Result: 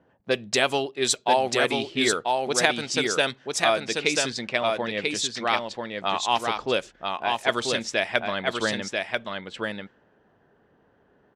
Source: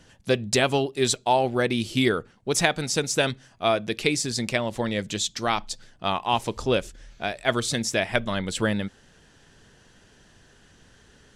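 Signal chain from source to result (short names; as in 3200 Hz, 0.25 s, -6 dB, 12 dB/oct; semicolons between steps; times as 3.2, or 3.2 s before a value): HPF 520 Hz 6 dB/oct; low-pass opened by the level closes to 800 Hz, open at -20.5 dBFS; echo 0.989 s -3.5 dB; gain +1.5 dB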